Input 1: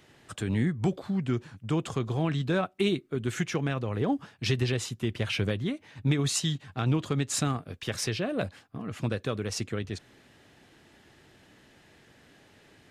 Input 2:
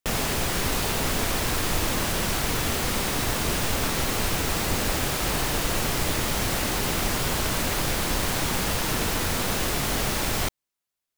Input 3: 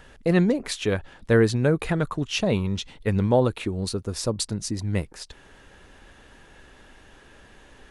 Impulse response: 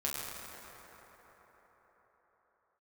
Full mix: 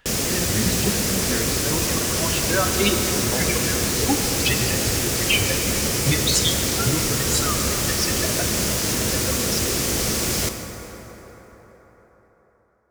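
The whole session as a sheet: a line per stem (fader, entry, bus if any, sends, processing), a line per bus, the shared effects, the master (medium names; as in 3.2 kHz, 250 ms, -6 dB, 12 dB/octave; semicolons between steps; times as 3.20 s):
+2.5 dB, 0.00 s, send -5 dB, expander on every frequency bin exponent 3
-1.0 dB, 0.00 s, send -5 dB, high-pass 56 Hz; high-order bell 1.7 kHz -12.5 dB 2.9 oct; vibrato with a chosen wave saw up 3.3 Hz, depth 100 cents
-16.5 dB, 0.00 s, send -7.5 dB, none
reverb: on, RT60 5.1 s, pre-delay 7 ms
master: peaking EQ 2.9 kHz +10.5 dB 2.8 oct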